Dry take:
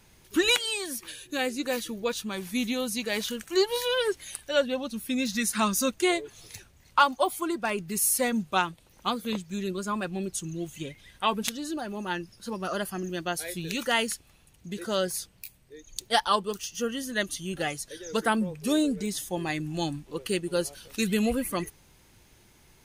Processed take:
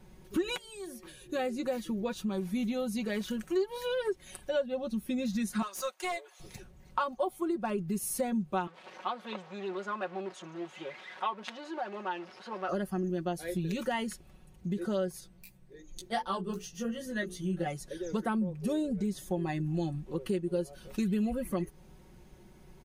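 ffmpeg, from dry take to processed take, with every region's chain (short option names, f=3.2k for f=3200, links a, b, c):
-filter_complex "[0:a]asettb=1/sr,asplit=3[a][b][c];[a]atrim=end=0.574[d];[b]atrim=start=0.57:end=1.29,asetpts=PTS-STARTPTS,afade=t=in:d=0.004:c=qsin,afade=t=out:st=0.716:d=0.004:c=qsin,bandreject=f=181.5:t=h:w=4,bandreject=f=363:t=h:w=4,bandreject=f=544.5:t=h:w=4,bandreject=f=726:t=h:w=4,acrossover=split=200|6600[e][f][g];[e]acompressor=threshold=-58dB:ratio=4[h];[f]acompressor=threshold=-46dB:ratio=4[i];[g]acompressor=threshold=-43dB:ratio=4[j];[h][i][j]amix=inputs=3:normalize=0[k];[c]atrim=start=1.286[l];[d][k]acrossfade=d=0.004:c1=hsin:c2=qsin[m];[m][l]acrossfade=d=0.004:c1=qsin:c2=hsin,asettb=1/sr,asplit=3[n][o][p];[n]atrim=end=5.624[q];[o]atrim=start=5.62:end=6.4,asetpts=PTS-STARTPTS,afade=t=in:d=0.004:c=qsin,afade=t=out:st=0.776:d=0.004:c=qsin,highpass=f=660:w=0.5412,highpass=f=660:w=1.3066,asoftclip=type=hard:threshold=-25dB[r];[p]atrim=start=6.396[s];[q][r]acrossfade=d=0.004:c1=hsin:c2=qsin[t];[t][s]acrossfade=d=0.004:c1=qsin:c2=hsin,asettb=1/sr,asplit=3[u][v][w];[u]atrim=end=8.674[x];[v]atrim=start=8.67:end=12.69,asetpts=PTS-STARTPTS,afade=t=in:d=0.004:c=qsin,afade=t=out:st=4.016:d=0.004:c=qsin,aeval=exprs='val(0)+0.5*0.0188*sgn(val(0))':c=same,highpass=740,lowpass=3.3k[y];[w]atrim=start=12.686[z];[x][y]acrossfade=d=0.004:c1=hsin:c2=qsin[aa];[aa][z]acrossfade=d=0.004:c1=qsin:c2=hsin,asettb=1/sr,asplit=3[ab][ac][ad];[ab]atrim=end=15.204[ae];[ac]atrim=start=15.2:end=17.66,asetpts=PTS-STARTPTS,afade=t=in:d=0.004:c=qsin,afade=t=out:st=2.456:d=0.004:c=qsin,bandreject=f=60:t=h:w=6,bandreject=f=120:t=h:w=6,bandreject=f=180:t=h:w=6,bandreject=f=240:t=h:w=6,bandreject=f=300:t=h:w=6,bandreject=f=360:t=h:w=6,bandreject=f=420:t=h:w=6,bandreject=f=480:t=h:w=6,bandreject=f=540:t=h:w=6,aecho=1:1:5.9:0.4,atrim=end_sample=108486,flanger=delay=15.5:depth=2.2:speed=2.7[af];[ad]atrim=start=17.656[ag];[ae][af]acrossfade=d=0.004:c1=hsin:c2=qsin[ah];[ah][ag]acrossfade=d=0.004:c1=qsin:c2=hsin,tiltshelf=f=1.3k:g=7.5,aecho=1:1:5.4:0.65,acompressor=threshold=-28dB:ratio=3,volume=-3dB"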